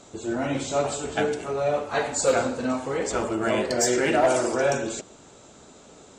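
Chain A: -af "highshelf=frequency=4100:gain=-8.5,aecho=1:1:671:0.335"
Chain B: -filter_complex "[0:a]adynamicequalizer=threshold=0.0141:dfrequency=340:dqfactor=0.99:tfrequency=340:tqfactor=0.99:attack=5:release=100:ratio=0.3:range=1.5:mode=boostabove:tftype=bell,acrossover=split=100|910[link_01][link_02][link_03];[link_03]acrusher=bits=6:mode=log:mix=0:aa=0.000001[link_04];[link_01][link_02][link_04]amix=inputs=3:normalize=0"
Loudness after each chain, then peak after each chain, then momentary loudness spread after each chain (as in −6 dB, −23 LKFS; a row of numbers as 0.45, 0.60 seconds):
−25.5, −23.5 LKFS; −11.0, −9.0 dBFS; 10, 7 LU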